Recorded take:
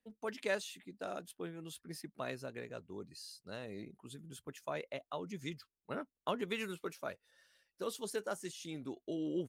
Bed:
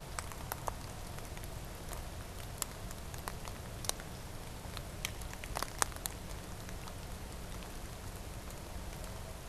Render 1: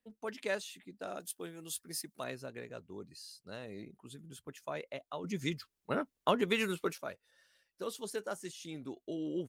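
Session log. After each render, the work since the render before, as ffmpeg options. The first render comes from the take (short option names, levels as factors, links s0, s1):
-filter_complex "[0:a]asettb=1/sr,asplit=3[s0][s1][s2];[s0]atrim=end=1.204[s3];[s1]atrim=start=1.2:end=2.24,asetpts=PTS-STARTPTS,afade=t=in:d=0.004:c=qsin,afade=t=out:st=1.036:d=0.004:c=qsin,bass=f=250:g=-4,treble=f=4000:g=13[s4];[s2]atrim=start=2.236[s5];[s3][s4]acrossfade=d=0.004:c1=hsin:c2=qsin[s6];[s6][s5]acrossfade=d=0.004:c1=qsin:c2=hsin,asettb=1/sr,asplit=3[s7][s8][s9];[s7]atrim=end=5.244[s10];[s8]atrim=start=5.24:end=6.98,asetpts=PTS-STARTPTS,afade=t=in:d=0.004:c=qsin,afade=t=out:st=1.736:d=0.004:c=qsin,acontrast=87[s11];[s9]atrim=start=6.976[s12];[s10][s11]acrossfade=d=0.004:c1=hsin:c2=qsin[s13];[s13][s12]acrossfade=d=0.004:c1=qsin:c2=hsin"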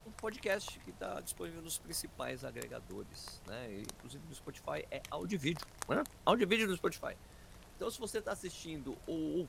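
-filter_complex "[1:a]volume=0.266[s0];[0:a][s0]amix=inputs=2:normalize=0"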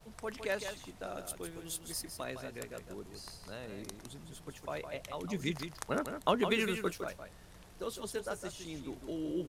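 -af "aecho=1:1:159:0.398"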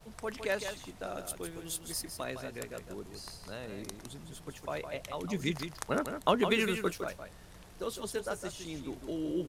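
-af "volume=1.33"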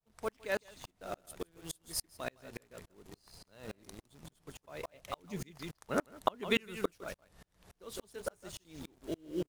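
-filter_complex "[0:a]asplit=2[s0][s1];[s1]acrusher=bits=6:mix=0:aa=0.000001,volume=0.531[s2];[s0][s2]amix=inputs=2:normalize=0,aeval=exprs='val(0)*pow(10,-36*if(lt(mod(-3.5*n/s,1),2*abs(-3.5)/1000),1-mod(-3.5*n/s,1)/(2*abs(-3.5)/1000),(mod(-3.5*n/s,1)-2*abs(-3.5)/1000)/(1-2*abs(-3.5)/1000))/20)':c=same"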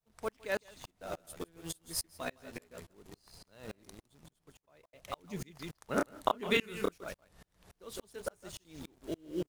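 -filter_complex "[0:a]asettb=1/sr,asplit=3[s0][s1][s2];[s0]atrim=end=0.994[s3];[s1]atrim=start=0.99:end=2.93,asetpts=PTS-STARTPTS,afade=t=in:d=0.004:c=qsin,afade=t=out:st=1.936:d=0.004:c=qsin,asplit=2[s4][s5];[s5]adelay=12,volume=0.631[s6];[s4][s6]amix=inputs=2:normalize=0,atrim=end_sample=85554[s7];[s2]atrim=start=2.926[s8];[s3][s7]acrossfade=d=0.004:c1=hsin:c2=qsin[s9];[s9][s8]acrossfade=d=0.004:c1=qsin:c2=hsin,asettb=1/sr,asplit=3[s10][s11][s12];[s10]atrim=end=5.944[s13];[s11]atrim=start=5.94:end=6.98,asetpts=PTS-STARTPTS,afade=t=in:d=0.004:c=qsin,afade=t=out:st=1.036:d=0.004:c=qsin,asplit=2[s14][s15];[s15]adelay=29,volume=0.75[s16];[s14][s16]amix=inputs=2:normalize=0,atrim=end_sample=45864[s17];[s12]atrim=start=6.976[s18];[s13][s17]acrossfade=d=0.004:c1=hsin:c2=qsin[s19];[s19][s18]acrossfade=d=0.004:c1=qsin:c2=hsin,asplit=2[s20][s21];[s20]atrim=end=4.93,asetpts=PTS-STARTPTS,afade=t=out:st=3.66:d=1.27[s22];[s21]atrim=start=4.93,asetpts=PTS-STARTPTS,afade=t=in:d=0.004:c=hsin[s23];[s22][s23]concat=n=2:v=0:a=1"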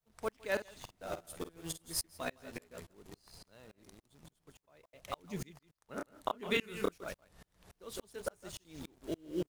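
-filter_complex "[0:a]asettb=1/sr,asplit=3[s0][s1][s2];[s0]atrim=end=0.474[s3];[s1]atrim=start=0.47:end=2,asetpts=PTS-STARTPTS,afade=t=in:d=0.004:c=qsin,afade=t=out:st=1.526:d=0.004:c=qsin,asplit=2[s4][s5];[s5]adelay=50,volume=0.251[s6];[s4][s6]amix=inputs=2:normalize=0,atrim=end_sample=67473[s7];[s2]atrim=start=1.996[s8];[s3][s7]acrossfade=d=0.004:c1=hsin:c2=qsin[s9];[s9][s8]acrossfade=d=0.004:c1=qsin:c2=hsin,asettb=1/sr,asplit=3[s10][s11][s12];[s10]atrim=end=3.454[s13];[s11]atrim=start=3.45:end=4.11,asetpts=PTS-STARTPTS,afade=t=in:d=0.004:c=qsin,afade=t=out:st=0.656:d=0.004:c=qsin,acompressor=threshold=0.00251:ratio=6:attack=3.2:release=140:knee=1:detection=peak[s14];[s12]atrim=start=4.106[s15];[s13][s14]acrossfade=d=0.004:c1=hsin:c2=qsin[s16];[s16][s15]acrossfade=d=0.004:c1=qsin:c2=hsin,asplit=2[s17][s18];[s17]atrim=end=5.59,asetpts=PTS-STARTPTS,afade=t=out:st=5.586:d=0.004:c=hsin[s19];[s18]atrim=start=5.59,asetpts=PTS-STARTPTS,afade=t=in:d=1.38[s20];[s19][s20]concat=n=2:v=0:a=1"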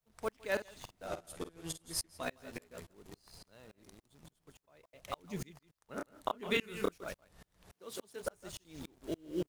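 -filter_complex "[0:a]asettb=1/sr,asplit=3[s0][s1][s2];[s0]atrim=end=1.074[s3];[s1]atrim=start=1.07:end=2.23,asetpts=PTS-STARTPTS,afade=t=in:d=0.004:c=qsin,afade=t=out:st=1.156:d=0.004:c=qsin,lowpass=12000[s4];[s2]atrim=start=2.226[s5];[s3][s4]acrossfade=d=0.004:c1=hsin:c2=qsin[s6];[s6][s5]acrossfade=d=0.004:c1=qsin:c2=hsin,asettb=1/sr,asplit=3[s7][s8][s9];[s7]atrim=end=7.724[s10];[s8]atrim=start=7.72:end=8.23,asetpts=PTS-STARTPTS,afade=t=in:d=0.004:c=qsin,afade=t=out:st=0.506:d=0.004:c=qsin,highpass=150[s11];[s9]atrim=start=8.226[s12];[s10][s11]acrossfade=d=0.004:c1=hsin:c2=qsin[s13];[s13][s12]acrossfade=d=0.004:c1=qsin:c2=hsin"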